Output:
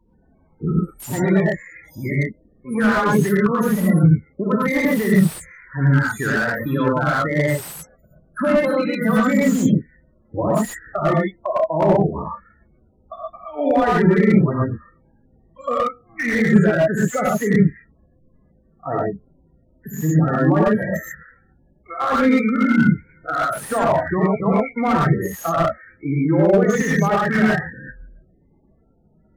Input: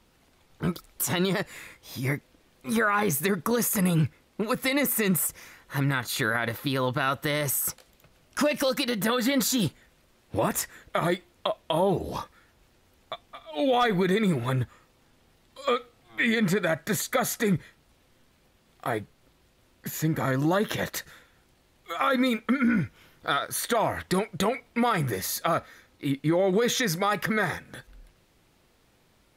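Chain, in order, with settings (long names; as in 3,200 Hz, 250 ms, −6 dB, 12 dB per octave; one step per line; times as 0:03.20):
in parallel at −2 dB: output level in coarse steps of 14 dB
on the sum: flat-topped bell 3,800 Hz −9.5 dB 1.2 octaves
spectral peaks only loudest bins 16
0:23.50–0:24.23: high-shelf EQ 3,000 Hz +6 dB
reverb whose tail is shaped and stops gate 150 ms rising, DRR −5.5 dB
slew-rate limiting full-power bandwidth 170 Hz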